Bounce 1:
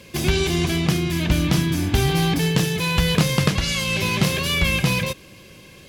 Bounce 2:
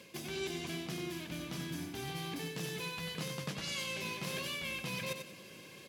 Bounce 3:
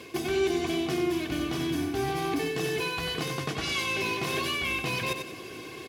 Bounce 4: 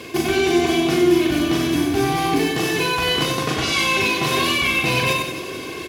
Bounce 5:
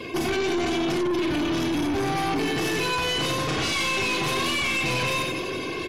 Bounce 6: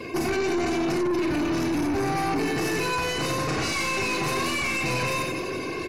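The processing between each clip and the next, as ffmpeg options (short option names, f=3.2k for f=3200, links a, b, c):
-af "areverse,acompressor=threshold=-28dB:ratio=10,areverse,highpass=180,aecho=1:1:93|186|279|372:0.447|0.13|0.0376|0.0109,volume=-7dB"
-filter_complex "[0:a]highshelf=f=2.7k:g=-8.5,aecho=1:1:2.7:0.72,asplit=2[a][b];[b]alimiter=level_in=9dB:limit=-24dB:level=0:latency=1:release=203,volume=-9dB,volume=-0.5dB[c];[a][c]amix=inputs=2:normalize=0,volume=6.5dB"
-af "aecho=1:1:40|96|174.4|284.2|437.8:0.631|0.398|0.251|0.158|0.1,volume=8.5dB"
-af "alimiter=limit=-12.5dB:level=0:latency=1:release=17,aeval=exprs='(tanh(15.8*val(0)+0.2)-tanh(0.2))/15.8':c=same,afftdn=nr=15:nf=-44,volume=2dB"
-af "equalizer=f=3.3k:w=5.1:g=-14"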